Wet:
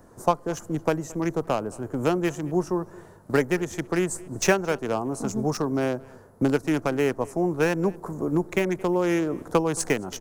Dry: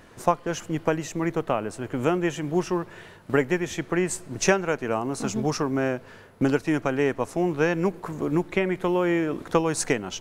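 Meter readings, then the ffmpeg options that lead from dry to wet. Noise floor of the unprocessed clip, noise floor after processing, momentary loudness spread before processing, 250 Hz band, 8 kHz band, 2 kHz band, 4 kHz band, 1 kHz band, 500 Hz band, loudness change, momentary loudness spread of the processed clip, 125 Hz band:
-48 dBFS, -49 dBFS, 5 LU, 0.0 dB, -0.5 dB, -1.5 dB, -1.0 dB, -0.5 dB, 0.0 dB, 0.0 dB, 5 LU, 0.0 dB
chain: -filter_complex "[0:a]acrossover=split=180|1400|5400[a][b][c][d];[c]acrusher=bits=4:mix=0:aa=0.5[e];[a][b][e][d]amix=inputs=4:normalize=0,asplit=2[f][g];[g]adelay=221.6,volume=-23dB,highshelf=f=4k:g=-4.99[h];[f][h]amix=inputs=2:normalize=0"

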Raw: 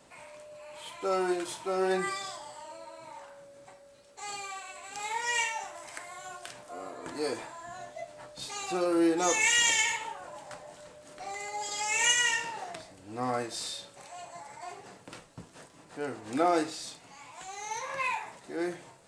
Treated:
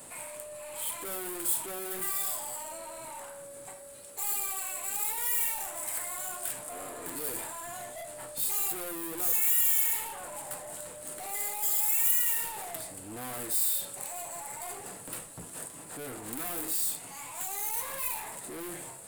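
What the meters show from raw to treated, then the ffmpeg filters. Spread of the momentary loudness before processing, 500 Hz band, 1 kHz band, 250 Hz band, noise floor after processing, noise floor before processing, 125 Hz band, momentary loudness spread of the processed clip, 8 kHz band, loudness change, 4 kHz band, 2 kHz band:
22 LU, -9.0 dB, -6.5 dB, -11.0 dB, -46 dBFS, -56 dBFS, -3.0 dB, 17 LU, +2.5 dB, 0.0 dB, -9.0 dB, -10.0 dB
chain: -af "aeval=exprs='0.266*sin(PI/2*3.55*val(0)/0.266)':c=same,aeval=exprs='(tanh(35.5*val(0)+0.15)-tanh(0.15))/35.5':c=same,aexciter=amount=13.8:drive=2.4:freq=8.3k,volume=-8.5dB"

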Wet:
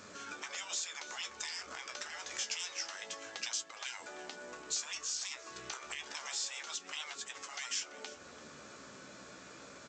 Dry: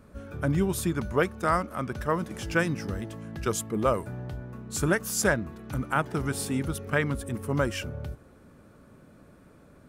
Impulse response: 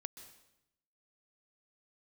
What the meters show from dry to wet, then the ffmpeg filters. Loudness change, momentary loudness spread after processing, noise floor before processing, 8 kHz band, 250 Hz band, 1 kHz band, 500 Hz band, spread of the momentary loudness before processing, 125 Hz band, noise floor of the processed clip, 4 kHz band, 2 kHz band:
-11.0 dB, 14 LU, -55 dBFS, -2.5 dB, -27.5 dB, -15.5 dB, -22.5 dB, 11 LU, -36.0 dB, -53 dBFS, +2.5 dB, -11.0 dB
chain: -filter_complex "[0:a]afftfilt=real='re*lt(hypot(re,im),0.0447)':imag='im*lt(hypot(re,im),0.0447)':win_size=1024:overlap=0.75,highpass=f=620:p=1,acompressor=threshold=-53dB:ratio=4,aresample=16000,acrusher=bits=5:mode=log:mix=0:aa=0.000001,aresample=44100,flanger=delay=9.7:depth=5.8:regen=45:speed=0.27:shape=sinusoidal,crystalizer=i=5.5:c=0,asplit=2[a][b];[b]adelay=338.2,volume=-14dB,highshelf=f=4k:g=-7.61[c];[a][c]amix=inputs=2:normalize=0,volume=9.5dB"

